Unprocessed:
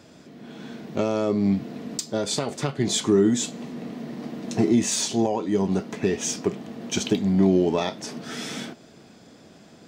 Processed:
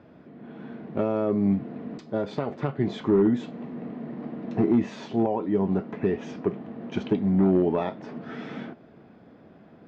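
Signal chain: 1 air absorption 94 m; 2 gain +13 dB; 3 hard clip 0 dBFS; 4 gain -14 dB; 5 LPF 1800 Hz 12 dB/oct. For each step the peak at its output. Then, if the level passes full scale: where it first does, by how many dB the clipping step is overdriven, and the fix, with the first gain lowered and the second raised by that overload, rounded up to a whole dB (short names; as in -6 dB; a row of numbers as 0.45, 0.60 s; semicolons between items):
-9.0, +4.0, 0.0, -14.0, -14.0 dBFS; step 2, 4.0 dB; step 2 +9 dB, step 4 -10 dB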